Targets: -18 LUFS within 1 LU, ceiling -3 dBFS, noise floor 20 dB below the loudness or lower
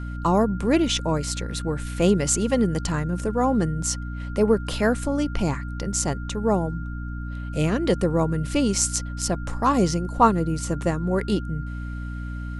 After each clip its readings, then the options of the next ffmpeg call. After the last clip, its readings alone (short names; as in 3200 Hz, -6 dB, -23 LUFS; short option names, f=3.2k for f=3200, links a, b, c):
hum 60 Hz; harmonics up to 300 Hz; hum level -29 dBFS; steady tone 1400 Hz; tone level -41 dBFS; loudness -24.0 LUFS; peak -3.5 dBFS; loudness target -18.0 LUFS
-> -af "bandreject=f=60:t=h:w=4,bandreject=f=120:t=h:w=4,bandreject=f=180:t=h:w=4,bandreject=f=240:t=h:w=4,bandreject=f=300:t=h:w=4"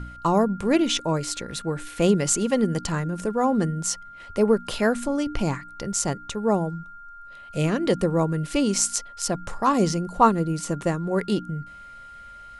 hum none; steady tone 1400 Hz; tone level -41 dBFS
-> -af "bandreject=f=1.4k:w=30"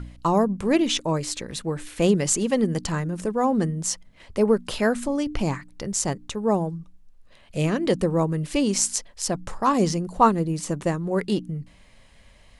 steady tone none; loudness -24.0 LUFS; peak -5.0 dBFS; loudness target -18.0 LUFS
-> -af "volume=6dB,alimiter=limit=-3dB:level=0:latency=1"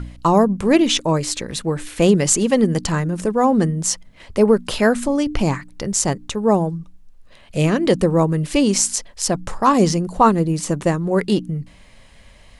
loudness -18.5 LUFS; peak -3.0 dBFS; noise floor -47 dBFS